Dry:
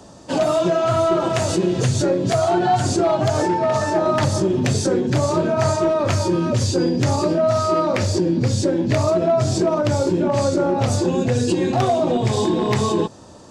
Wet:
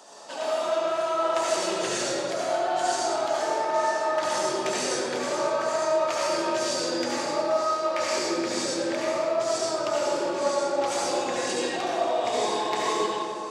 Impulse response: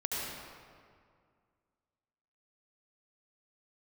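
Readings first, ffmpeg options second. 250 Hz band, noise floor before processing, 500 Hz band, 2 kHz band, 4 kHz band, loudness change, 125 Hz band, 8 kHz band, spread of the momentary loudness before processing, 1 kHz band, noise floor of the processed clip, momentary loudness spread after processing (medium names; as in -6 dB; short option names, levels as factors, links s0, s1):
-13.5 dB, -42 dBFS, -6.5 dB, -1.5 dB, -1.5 dB, -7.0 dB, -28.5 dB, -2.5 dB, 2 LU, -4.0 dB, -31 dBFS, 3 LU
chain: -filter_complex "[0:a]highpass=700,areverse,acompressor=threshold=0.0355:ratio=6,areverse[s0];[1:a]atrim=start_sample=2205[s1];[s0][s1]afir=irnorm=-1:irlink=0"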